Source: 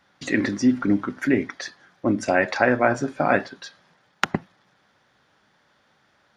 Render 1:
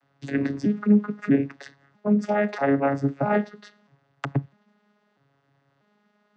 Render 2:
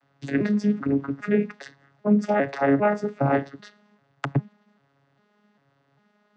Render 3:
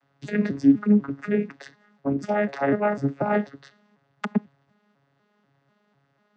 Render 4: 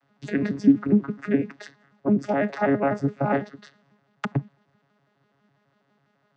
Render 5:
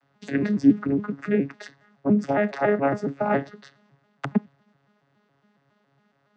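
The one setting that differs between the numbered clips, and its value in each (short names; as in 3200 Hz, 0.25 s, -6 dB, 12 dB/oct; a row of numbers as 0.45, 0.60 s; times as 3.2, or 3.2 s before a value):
arpeggiated vocoder, a note every: 645, 398, 247, 83, 139 ms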